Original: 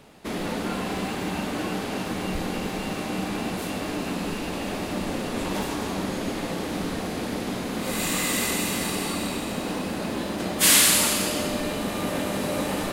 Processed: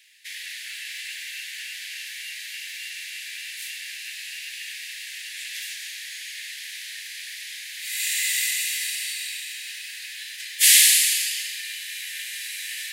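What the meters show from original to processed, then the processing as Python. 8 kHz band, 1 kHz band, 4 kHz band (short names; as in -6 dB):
+3.0 dB, under -35 dB, +3.0 dB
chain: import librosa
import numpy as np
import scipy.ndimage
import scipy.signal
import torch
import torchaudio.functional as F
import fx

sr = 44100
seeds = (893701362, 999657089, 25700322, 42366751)

y = scipy.signal.sosfilt(scipy.signal.butter(16, 1700.0, 'highpass', fs=sr, output='sos'), x)
y = y * 10.0 ** (3.0 / 20.0)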